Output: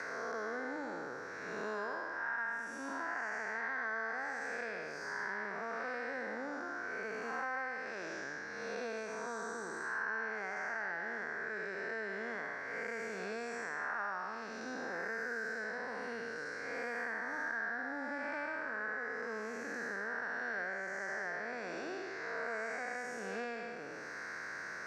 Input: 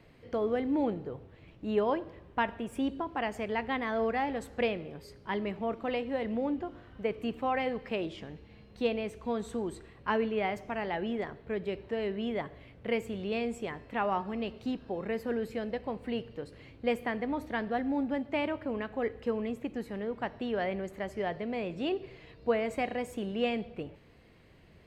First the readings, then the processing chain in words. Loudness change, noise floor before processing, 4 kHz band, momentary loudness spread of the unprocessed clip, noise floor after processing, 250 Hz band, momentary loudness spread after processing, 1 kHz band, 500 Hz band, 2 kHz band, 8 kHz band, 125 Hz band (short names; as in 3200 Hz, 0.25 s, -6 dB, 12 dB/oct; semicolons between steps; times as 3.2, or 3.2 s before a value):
-5.5 dB, -56 dBFS, -10.0 dB, 8 LU, -44 dBFS, -14.5 dB, 5 LU, -5.5 dB, -10.0 dB, +4.5 dB, n/a, -15.5 dB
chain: time blur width 0.306 s; double band-pass 3000 Hz, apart 1.9 oct; three-band squash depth 100%; gain +17.5 dB